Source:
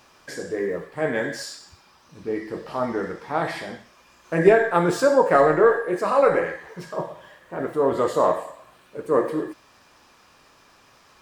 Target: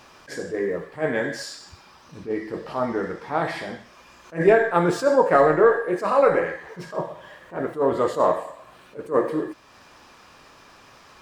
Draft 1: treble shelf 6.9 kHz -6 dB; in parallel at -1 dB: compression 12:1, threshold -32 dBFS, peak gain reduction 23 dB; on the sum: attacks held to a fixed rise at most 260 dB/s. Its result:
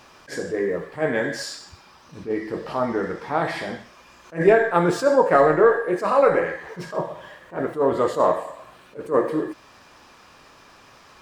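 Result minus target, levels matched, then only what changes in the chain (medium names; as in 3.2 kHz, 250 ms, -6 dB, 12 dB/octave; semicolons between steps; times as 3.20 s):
compression: peak gain reduction -10.5 dB
change: compression 12:1, threshold -43.5 dBFS, peak gain reduction 34 dB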